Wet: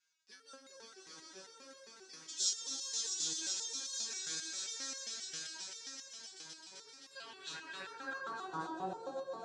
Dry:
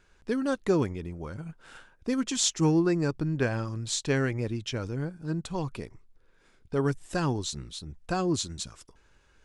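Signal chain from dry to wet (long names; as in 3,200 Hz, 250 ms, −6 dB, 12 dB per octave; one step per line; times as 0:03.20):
echo that builds up and dies away 130 ms, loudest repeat 5, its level −4.5 dB
band-pass filter sweep 5,400 Hz → 690 Hz, 0:06.86–0:08.92
step-sequenced resonator 7.5 Hz 160–540 Hz
level +9 dB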